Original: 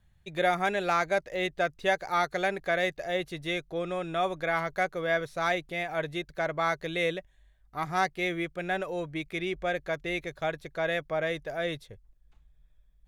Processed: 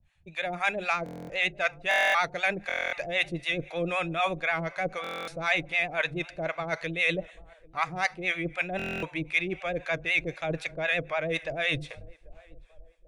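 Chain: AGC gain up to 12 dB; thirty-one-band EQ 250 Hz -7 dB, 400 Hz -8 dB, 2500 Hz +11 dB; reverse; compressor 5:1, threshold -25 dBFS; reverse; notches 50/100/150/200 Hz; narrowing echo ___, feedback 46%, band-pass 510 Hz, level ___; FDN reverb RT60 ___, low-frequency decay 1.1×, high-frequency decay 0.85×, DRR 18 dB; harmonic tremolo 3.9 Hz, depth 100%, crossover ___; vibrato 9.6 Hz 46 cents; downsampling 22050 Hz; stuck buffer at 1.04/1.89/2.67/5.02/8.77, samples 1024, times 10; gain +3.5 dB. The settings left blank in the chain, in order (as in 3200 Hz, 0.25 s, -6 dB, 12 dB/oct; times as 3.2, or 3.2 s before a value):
0.79 s, -23 dB, 0.92 s, 620 Hz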